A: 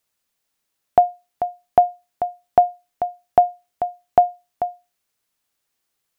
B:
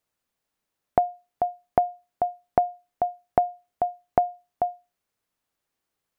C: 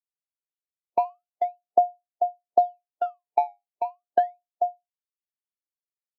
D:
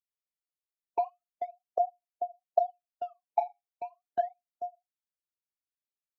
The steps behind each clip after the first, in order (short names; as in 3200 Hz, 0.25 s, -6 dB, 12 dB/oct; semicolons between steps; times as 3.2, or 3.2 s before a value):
high shelf 2000 Hz -9 dB; compressor, threshold -17 dBFS, peak gain reduction 8 dB
decimation with a swept rate 16×, swing 160% 0.35 Hz; band-pass 500 Hz, Q 0.89; spectral expander 1.5:1
phaser stages 12, 3.7 Hz, lowest notch 150–1400 Hz; gain -4.5 dB